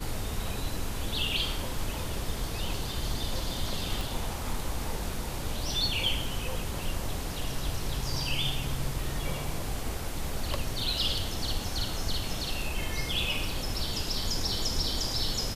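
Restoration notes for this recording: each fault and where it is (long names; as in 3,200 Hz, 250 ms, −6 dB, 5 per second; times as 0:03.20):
0:04.01: click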